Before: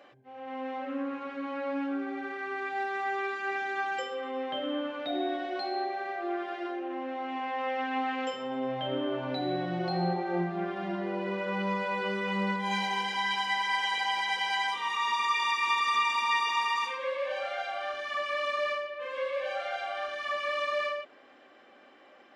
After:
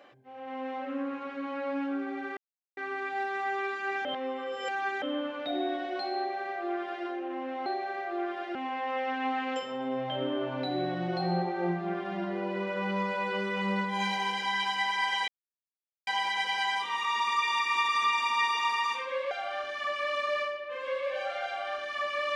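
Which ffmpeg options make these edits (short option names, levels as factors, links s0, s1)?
-filter_complex "[0:a]asplit=8[s0][s1][s2][s3][s4][s5][s6][s7];[s0]atrim=end=2.37,asetpts=PTS-STARTPTS,afade=t=out:st=2.366:d=0.004:c=hsin,apad=pad_dur=0.4[s8];[s1]atrim=start=2.37:end=3.652,asetpts=PTS-STARTPTS,afade=t=in:d=0.004:c=hsin[s9];[s2]atrim=start=3.648:end=4.622,asetpts=PTS-STARTPTS,areverse[s10];[s3]atrim=start=4.618:end=7.262[s11];[s4]atrim=start=5.768:end=6.662[s12];[s5]atrim=start=7.258:end=13.99,asetpts=PTS-STARTPTS,afade=t=out:st=6.728:d=0.004:c=hsin,apad=pad_dur=0.79[s13];[s6]atrim=start=13.99:end=17.232,asetpts=PTS-STARTPTS,afade=t=in:d=0.004:c=hsin[s14];[s7]atrim=start=17.608[s15];[s8][s9]concat=n=2:v=0:a=1[s16];[s16][s10]acrossfade=d=0.004:c1=hsin:c2=hsin[s17];[s17][s11]acrossfade=d=0.004:c1=hsin:c2=hsin[s18];[s18][s12]acrossfade=d=0.004:c1=hsin:c2=hsin[s19];[s13][s14]concat=n=2:v=0:a=1[s20];[s19][s20]acrossfade=d=0.004:c1=hsin:c2=hsin[s21];[s21][s15]acrossfade=d=0.004:c1=hsin:c2=hsin"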